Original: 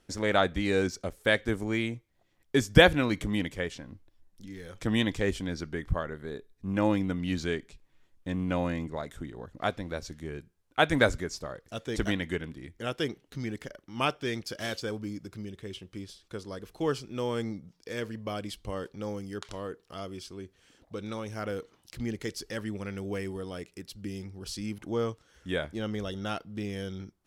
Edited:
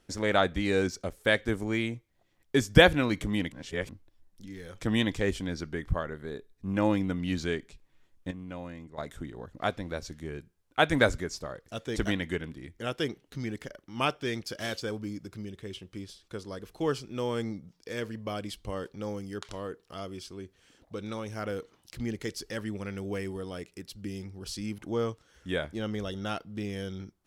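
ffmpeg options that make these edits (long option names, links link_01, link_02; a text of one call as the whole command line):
ffmpeg -i in.wav -filter_complex "[0:a]asplit=5[link_01][link_02][link_03][link_04][link_05];[link_01]atrim=end=3.522[link_06];[link_02]atrim=start=3.518:end=3.892,asetpts=PTS-STARTPTS,areverse[link_07];[link_03]atrim=start=3.888:end=8.312[link_08];[link_04]atrim=start=8.308:end=8.982,asetpts=PTS-STARTPTS,volume=-11dB[link_09];[link_05]atrim=start=8.978[link_10];[link_06][link_07]acrossfade=duration=0.004:curve1=hsin:curve2=hsin[link_11];[link_11][link_08]acrossfade=duration=0.004:curve1=hsin:curve2=hsin[link_12];[link_12][link_09]acrossfade=duration=0.004:curve1=hsin:curve2=hsin[link_13];[link_13][link_10]acrossfade=duration=0.004:curve1=hsin:curve2=hsin" out.wav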